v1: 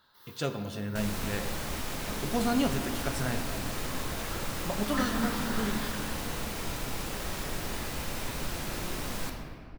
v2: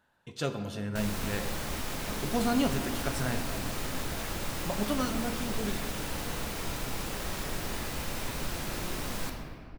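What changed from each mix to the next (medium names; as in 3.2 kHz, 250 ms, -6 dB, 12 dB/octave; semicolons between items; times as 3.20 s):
first sound: muted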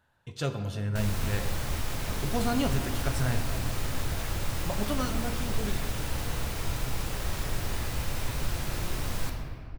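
master: add resonant low shelf 150 Hz +6.5 dB, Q 1.5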